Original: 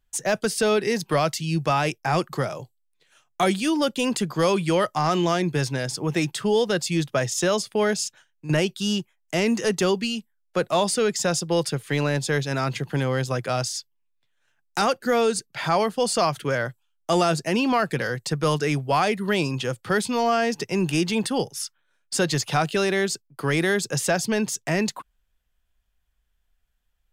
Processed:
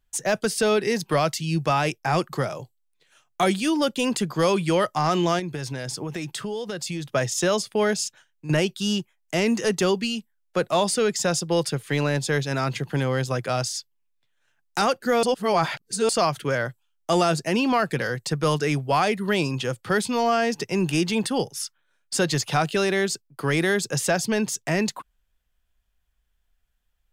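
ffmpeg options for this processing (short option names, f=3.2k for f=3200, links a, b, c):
-filter_complex "[0:a]asettb=1/sr,asplit=3[a][b][c];[a]atrim=end=5.394[d];[b]atrim=start=5.39:end=7.15,asetpts=PTS-STARTPTS,afade=t=in:d=0.004:c=qsin,afade=t=out:st=1.756:d=0.004:c=qsin,acompressor=threshold=-26dB:ratio=10:attack=3.2:release=140:knee=1:detection=peak[e];[c]atrim=start=7.146[f];[d][e]acrossfade=d=0.004:c1=hsin:c2=qsin[g];[g][f]acrossfade=d=0.004:c1=qsin:c2=hsin,asplit=3[h][i][j];[h]atrim=end=15.232[k];[i]atrim=start=15.228:end=16.092,asetpts=PTS-STARTPTS,areverse[l];[j]atrim=start=16.088[m];[k][l]acrossfade=d=0.004:c1=hsin:c2=hsin[n];[n][m]acrossfade=d=0.004:c1=hsin:c2=hsin"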